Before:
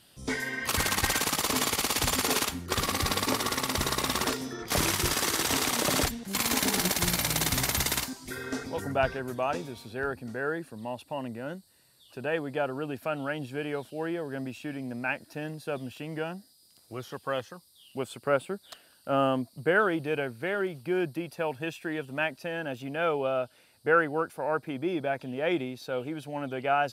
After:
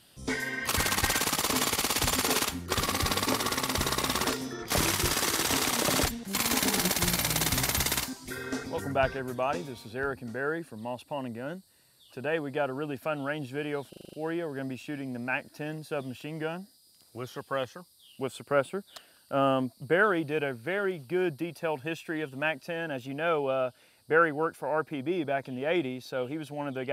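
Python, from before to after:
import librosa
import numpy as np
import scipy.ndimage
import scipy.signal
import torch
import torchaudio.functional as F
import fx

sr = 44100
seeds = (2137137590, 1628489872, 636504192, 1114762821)

y = fx.edit(x, sr, fx.stutter(start_s=13.89, slice_s=0.04, count=7), tone=tone)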